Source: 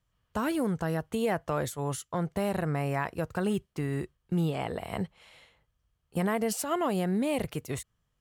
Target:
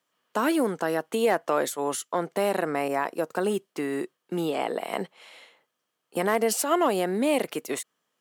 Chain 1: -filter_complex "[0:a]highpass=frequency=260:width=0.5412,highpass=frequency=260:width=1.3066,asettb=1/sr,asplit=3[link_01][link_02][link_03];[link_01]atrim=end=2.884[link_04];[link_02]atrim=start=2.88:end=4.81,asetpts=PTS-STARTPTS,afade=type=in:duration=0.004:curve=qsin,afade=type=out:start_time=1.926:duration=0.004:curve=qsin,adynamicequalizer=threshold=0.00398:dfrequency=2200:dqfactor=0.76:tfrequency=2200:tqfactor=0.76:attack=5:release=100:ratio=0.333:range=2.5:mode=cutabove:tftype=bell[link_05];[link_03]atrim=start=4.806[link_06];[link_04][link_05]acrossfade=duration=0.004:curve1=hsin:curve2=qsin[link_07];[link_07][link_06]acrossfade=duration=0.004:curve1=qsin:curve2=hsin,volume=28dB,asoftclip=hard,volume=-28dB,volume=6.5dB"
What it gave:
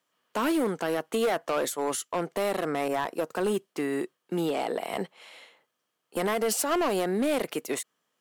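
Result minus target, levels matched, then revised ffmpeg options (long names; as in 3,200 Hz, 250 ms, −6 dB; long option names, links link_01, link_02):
gain into a clipping stage and back: distortion +25 dB
-filter_complex "[0:a]highpass=frequency=260:width=0.5412,highpass=frequency=260:width=1.3066,asettb=1/sr,asplit=3[link_01][link_02][link_03];[link_01]atrim=end=2.884[link_04];[link_02]atrim=start=2.88:end=4.81,asetpts=PTS-STARTPTS,afade=type=in:duration=0.004:curve=qsin,afade=type=out:start_time=1.926:duration=0.004:curve=qsin,adynamicequalizer=threshold=0.00398:dfrequency=2200:dqfactor=0.76:tfrequency=2200:tqfactor=0.76:attack=5:release=100:ratio=0.333:range=2.5:mode=cutabove:tftype=bell[link_05];[link_03]atrim=start=4.806[link_06];[link_04][link_05]acrossfade=duration=0.004:curve1=hsin:curve2=qsin[link_07];[link_07][link_06]acrossfade=duration=0.004:curve1=qsin:curve2=hsin,volume=19.5dB,asoftclip=hard,volume=-19.5dB,volume=6.5dB"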